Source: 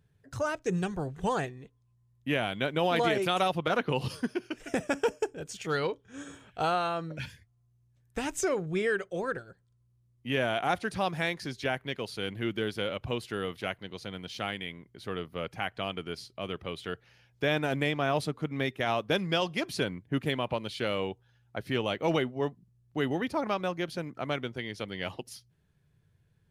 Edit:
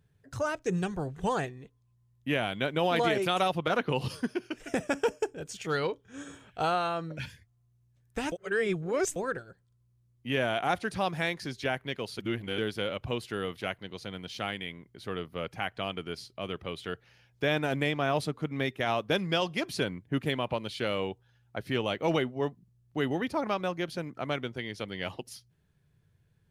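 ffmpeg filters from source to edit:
ffmpeg -i in.wav -filter_complex "[0:a]asplit=5[link_01][link_02][link_03][link_04][link_05];[link_01]atrim=end=8.322[link_06];[link_02]atrim=start=8.318:end=9.162,asetpts=PTS-STARTPTS,areverse[link_07];[link_03]atrim=start=9.158:end=12.192[link_08];[link_04]atrim=start=12.188:end=12.582,asetpts=PTS-STARTPTS,areverse[link_09];[link_05]atrim=start=12.578[link_10];[link_06][link_07]acrossfade=duration=0.004:curve1=hsin:curve2=hsin[link_11];[link_11][link_08]acrossfade=duration=0.004:curve1=hsin:curve2=hsin[link_12];[link_12][link_09]acrossfade=duration=0.004:curve1=hsin:curve2=hsin[link_13];[link_13][link_10]acrossfade=duration=0.004:curve1=hsin:curve2=hsin" out.wav

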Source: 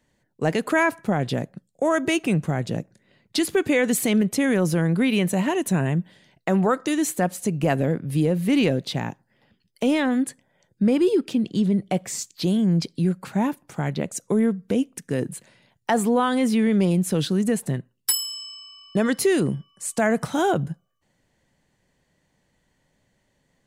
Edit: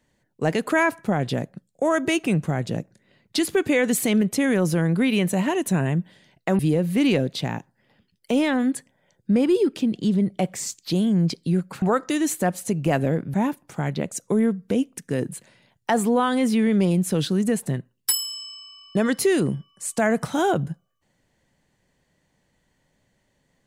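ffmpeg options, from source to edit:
ffmpeg -i in.wav -filter_complex "[0:a]asplit=4[link_01][link_02][link_03][link_04];[link_01]atrim=end=6.592[link_05];[link_02]atrim=start=8.108:end=13.342[link_06];[link_03]atrim=start=6.588:end=8.112[link_07];[link_04]atrim=start=13.338[link_08];[link_05][link_06]acrossfade=duration=0.004:curve1=hsin:curve2=hsin[link_09];[link_09][link_07]acrossfade=duration=0.004:curve1=hsin:curve2=hsin[link_10];[link_10][link_08]acrossfade=duration=0.004:curve1=hsin:curve2=hsin" out.wav

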